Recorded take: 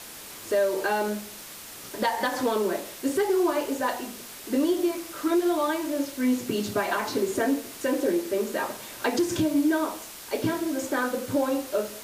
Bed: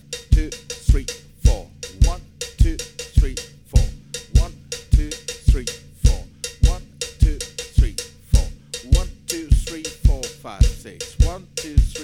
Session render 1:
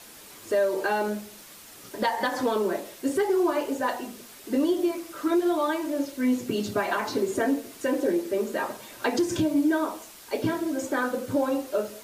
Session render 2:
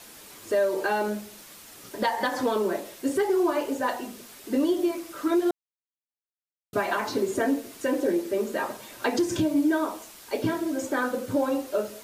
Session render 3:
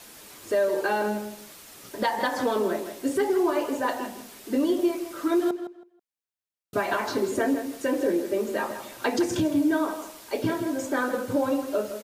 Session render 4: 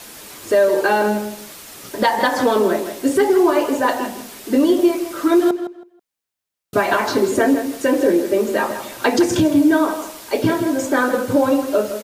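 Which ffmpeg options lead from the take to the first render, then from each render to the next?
-af "afftdn=nr=6:nf=-42"
-filter_complex "[0:a]asplit=3[a][b][c];[a]atrim=end=5.51,asetpts=PTS-STARTPTS,afade=t=out:st=5.506:d=0.004:c=hsin[d];[b]atrim=start=5.51:end=6.73,asetpts=PTS-STARTPTS,volume=0[e];[c]atrim=start=6.73,asetpts=PTS-STARTPTS,afade=t=in:d=0.004:c=hsin[f];[d][e][f]concat=n=3:v=0:a=1"
-filter_complex "[0:a]asplit=2[a][b];[b]adelay=162,lowpass=f=4k:p=1,volume=-10dB,asplit=2[c][d];[d]adelay=162,lowpass=f=4k:p=1,volume=0.21,asplit=2[e][f];[f]adelay=162,lowpass=f=4k:p=1,volume=0.21[g];[a][c][e][g]amix=inputs=4:normalize=0"
-af "volume=9dB"

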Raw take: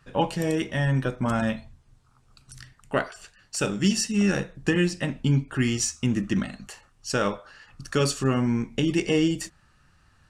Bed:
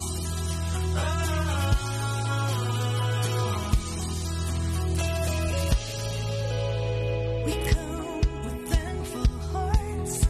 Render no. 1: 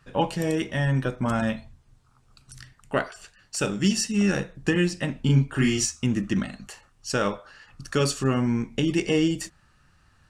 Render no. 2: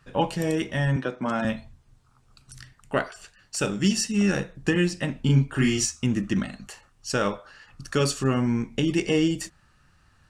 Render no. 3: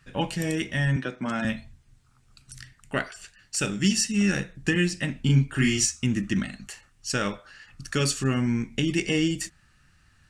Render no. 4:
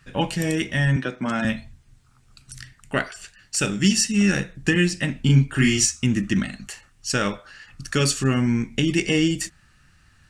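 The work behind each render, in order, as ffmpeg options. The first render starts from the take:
-filter_complex "[0:a]asettb=1/sr,asplit=3[a][b][c];[a]atrim=end=5.204[d];[b]atrim=start=5.2:end=5.86,asetpts=PTS-STARTPTS,afade=t=in:d=0.004:c=qsin,afade=t=out:st=0.656:d=0.004:c=qsin,asplit=2[e][f];[f]adelay=37,volume=-2dB[g];[e][g]amix=inputs=2:normalize=0,atrim=end_sample=29106[h];[c]atrim=start=5.856[i];[d][h]acrossfade=d=0.004:c1=hsin:c2=qsin[j];[j][i]acrossfade=d=0.004:c1=qsin:c2=hsin"
-filter_complex "[0:a]asettb=1/sr,asplit=3[a][b][c];[a]atrim=end=0.964[d];[b]atrim=start=0.96:end=1.45,asetpts=PTS-STARTPTS,afade=t=in:d=0.004:c=qsin,afade=t=out:st=0.486:d=0.004:c=qsin,acrossover=split=170 7000:gain=0.0794 1 0.0794[e][f][g];[e][f][g]amix=inputs=3:normalize=0[h];[c]atrim=start=1.446[i];[d][h]acrossfade=d=0.004:c1=hsin:c2=qsin[j];[j][i]acrossfade=d=0.004:c1=qsin:c2=hsin"
-af "equalizer=f=500:t=o:w=1:g=-5,equalizer=f=1k:t=o:w=1:g=-6,equalizer=f=2k:t=o:w=1:g=4,equalizer=f=8k:t=o:w=1:g=3"
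-af "volume=4dB"

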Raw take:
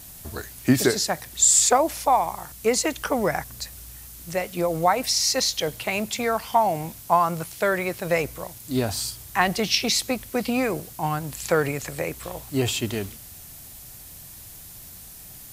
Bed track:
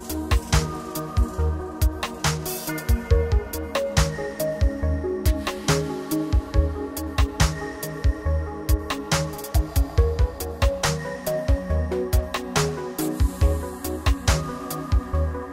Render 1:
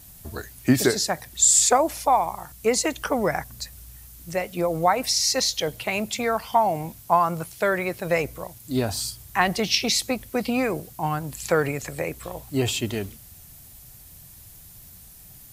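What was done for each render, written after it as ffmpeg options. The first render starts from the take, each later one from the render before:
-af "afftdn=nr=6:nf=-43"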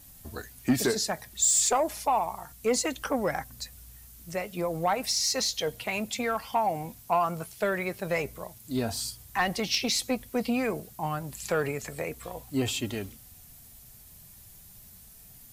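-af "flanger=delay=3.6:depth=1.5:regen=64:speed=0.31:shape=triangular,asoftclip=type=tanh:threshold=-15.5dB"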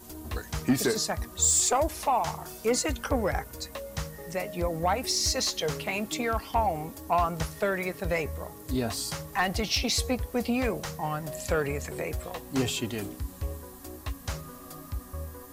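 -filter_complex "[1:a]volume=-14.5dB[a];[0:a][a]amix=inputs=2:normalize=0"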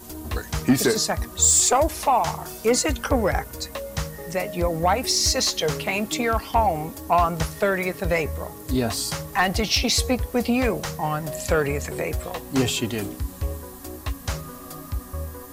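-af "volume=6dB"

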